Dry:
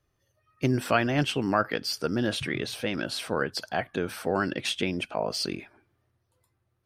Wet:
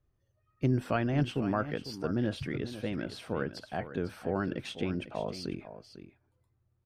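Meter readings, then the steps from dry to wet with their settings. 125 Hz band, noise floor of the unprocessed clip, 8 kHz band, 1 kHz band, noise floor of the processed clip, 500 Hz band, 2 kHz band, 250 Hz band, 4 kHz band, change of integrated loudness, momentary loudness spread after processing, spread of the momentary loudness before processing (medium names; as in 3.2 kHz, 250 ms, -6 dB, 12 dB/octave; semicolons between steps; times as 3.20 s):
-0.5 dB, -75 dBFS, -15.0 dB, -7.5 dB, -75 dBFS, -5.0 dB, -10.0 dB, -3.0 dB, -12.5 dB, -5.0 dB, 10 LU, 7 LU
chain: tilt EQ -2.5 dB/octave; on a send: delay 499 ms -12.5 dB; on the sum: trim -8 dB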